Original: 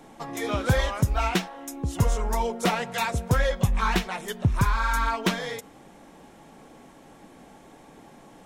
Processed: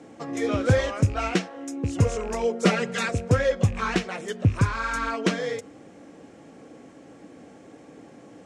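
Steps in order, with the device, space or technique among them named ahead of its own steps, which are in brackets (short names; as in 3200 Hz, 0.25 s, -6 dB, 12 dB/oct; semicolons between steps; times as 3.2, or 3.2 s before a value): car door speaker with a rattle (rattling part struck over -27 dBFS, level -31 dBFS; speaker cabinet 84–8400 Hz, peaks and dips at 100 Hz +8 dB, 290 Hz +7 dB, 490 Hz +7 dB, 920 Hz -8 dB, 3600 Hz -5 dB); 2.64–3.09 comb 5 ms, depth 98%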